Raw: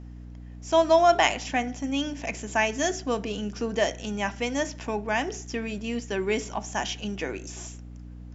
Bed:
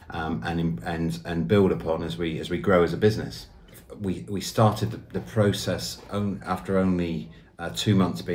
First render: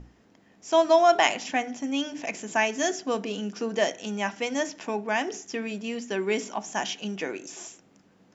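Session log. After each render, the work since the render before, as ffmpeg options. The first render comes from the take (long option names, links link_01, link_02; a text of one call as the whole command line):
ffmpeg -i in.wav -af "bandreject=frequency=60:width_type=h:width=6,bandreject=frequency=120:width_type=h:width=6,bandreject=frequency=180:width_type=h:width=6,bandreject=frequency=240:width_type=h:width=6,bandreject=frequency=300:width_type=h:width=6" out.wav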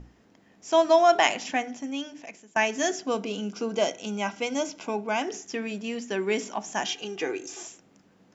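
ffmpeg -i in.wav -filter_complex "[0:a]asettb=1/sr,asplit=3[link_01][link_02][link_03];[link_01]atrim=end=3.074[link_04];[link_02]atrim=start=3.07:end=5.22,asetpts=PTS-STARTPTS,afade=type=in:duration=0.004:curve=qsin,afade=type=out:start_time=2.146:duration=0.004:curve=qsin,asuperstop=centerf=1800:order=8:qfactor=6.5[link_05];[link_03]atrim=start=5.216[link_06];[link_04][link_05]acrossfade=duration=0.004:curve1=hsin:curve2=qsin[link_07];[link_07][link_06]acrossfade=duration=0.004:curve1=qsin:curve2=hsin,asettb=1/sr,asplit=3[link_08][link_09][link_10];[link_08]atrim=end=6.864[link_11];[link_09]atrim=start=6.86:end=7.63,asetpts=PTS-STARTPTS,afade=type=in:duration=0.004:curve=qsin,afade=type=out:start_time=0.766:duration=0.004:curve=qsin,aecho=1:1:2.5:0.68,atrim=end_sample=33957[link_12];[link_10]atrim=start=7.626[link_13];[link_11][link_12]acrossfade=duration=0.004:curve1=hsin:curve2=qsin[link_14];[link_14][link_13]acrossfade=duration=0.004:curve1=qsin:curve2=hsin,asplit=2[link_15][link_16];[link_15]atrim=end=2.56,asetpts=PTS-STARTPTS,afade=type=out:start_time=1.5:duration=1.06:silence=0.0668344[link_17];[link_16]atrim=start=2.56,asetpts=PTS-STARTPTS,afade=type=in:duration=0.004:curve=hsin:silence=0.0668344[link_18];[link_17][link_18]concat=n=2:v=0:a=1" out.wav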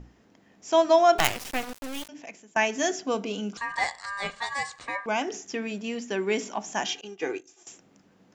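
ffmpeg -i in.wav -filter_complex "[0:a]asettb=1/sr,asplit=3[link_01][link_02][link_03];[link_01]atrim=end=1.184[link_04];[link_02]atrim=start=1.18:end=2.09,asetpts=PTS-STARTPTS,afade=type=in:duration=0.004:curve=qsin,afade=type=out:start_time=0.906:duration=0.004:curve=qsin,acrusher=bits=3:dc=4:mix=0:aa=0.000001[link_05];[link_03]atrim=start=2.086[link_06];[link_04][link_05]acrossfade=duration=0.004:curve1=hsin:curve2=qsin[link_07];[link_07][link_06]acrossfade=duration=0.004:curve1=qsin:curve2=hsin,asettb=1/sr,asplit=3[link_08][link_09][link_10];[link_08]atrim=end=3.574[link_11];[link_09]atrim=start=3.57:end=5.06,asetpts=PTS-STARTPTS,afade=type=in:duration=0.004:curve=qsin,afade=type=out:start_time=1.486:duration=0.004:curve=qsin,aeval=exprs='val(0)*sin(2*PI*1400*n/s)':channel_layout=same[link_12];[link_10]atrim=start=5.056[link_13];[link_11][link_12]acrossfade=duration=0.004:curve1=hsin:curve2=qsin[link_14];[link_14][link_13]acrossfade=duration=0.004:curve1=qsin:curve2=hsin,asettb=1/sr,asplit=3[link_15][link_16][link_17];[link_15]atrim=end=7.014[link_18];[link_16]atrim=start=7.01:end=7.67,asetpts=PTS-STARTPTS,afade=type=in:duration=0.004:curve=qsin,afade=type=out:start_time=0.656:duration=0.004:curve=qsin,agate=range=-33dB:threshold=-30dB:ratio=3:release=100:detection=peak[link_19];[link_17]atrim=start=7.666[link_20];[link_18][link_19]acrossfade=duration=0.004:curve1=hsin:curve2=qsin[link_21];[link_21][link_20]acrossfade=duration=0.004:curve1=qsin:curve2=hsin" out.wav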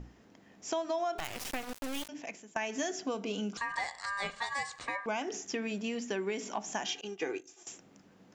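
ffmpeg -i in.wav -af "alimiter=limit=-16dB:level=0:latency=1:release=146,acompressor=threshold=-32dB:ratio=4" out.wav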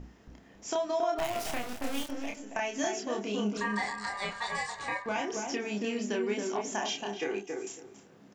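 ffmpeg -i in.wav -filter_complex "[0:a]asplit=2[link_01][link_02];[link_02]adelay=29,volume=-3dB[link_03];[link_01][link_03]amix=inputs=2:normalize=0,asplit=2[link_04][link_05];[link_05]adelay=276,lowpass=frequency=1200:poles=1,volume=-3dB,asplit=2[link_06][link_07];[link_07]adelay=276,lowpass=frequency=1200:poles=1,volume=0.22,asplit=2[link_08][link_09];[link_09]adelay=276,lowpass=frequency=1200:poles=1,volume=0.22[link_10];[link_06][link_08][link_10]amix=inputs=3:normalize=0[link_11];[link_04][link_11]amix=inputs=2:normalize=0" out.wav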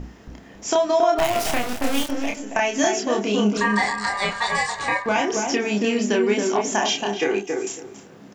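ffmpeg -i in.wav -af "volume=11.5dB" out.wav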